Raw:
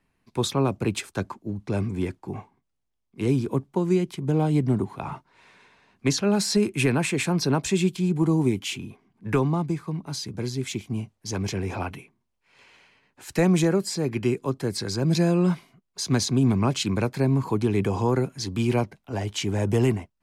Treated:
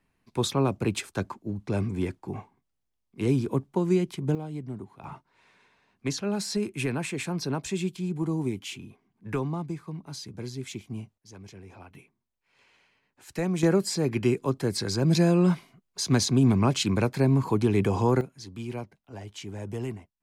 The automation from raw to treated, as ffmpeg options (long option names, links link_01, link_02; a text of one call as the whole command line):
ffmpeg -i in.wav -af "asetnsamples=nb_out_samples=441:pad=0,asendcmd='4.35 volume volume -14dB;5.04 volume volume -7dB;11.18 volume volume -18dB;11.95 volume volume -8dB;13.63 volume volume 0dB;18.21 volume volume -12dB',volume=-1.5dB" out.wav